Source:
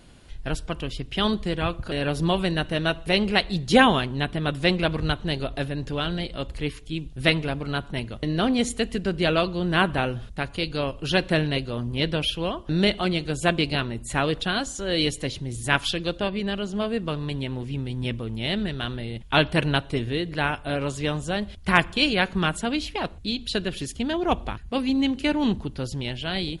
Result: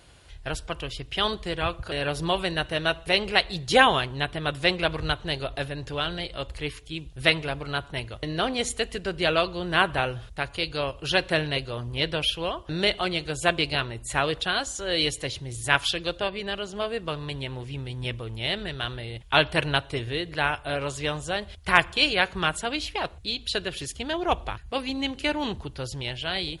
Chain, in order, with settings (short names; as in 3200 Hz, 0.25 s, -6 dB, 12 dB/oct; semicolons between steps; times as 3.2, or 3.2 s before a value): HPF 49 Hz; bell 220 Hz -13 dB 1.1 oct; gain +1 dB